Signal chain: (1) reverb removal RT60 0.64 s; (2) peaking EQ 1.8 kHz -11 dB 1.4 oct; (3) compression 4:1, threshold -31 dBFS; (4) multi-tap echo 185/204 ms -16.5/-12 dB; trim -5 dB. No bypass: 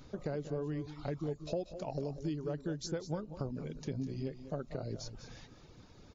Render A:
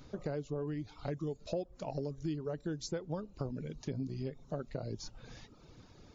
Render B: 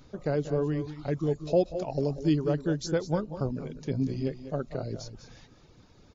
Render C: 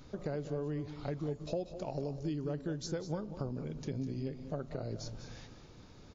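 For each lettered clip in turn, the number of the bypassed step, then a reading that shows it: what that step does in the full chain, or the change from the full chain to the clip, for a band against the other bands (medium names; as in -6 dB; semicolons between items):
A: 4, echo-to-direct -10.5 dB to none; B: 3, mean gain reduction 6.0 dB; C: 1, momentary loudness spread change -2 LU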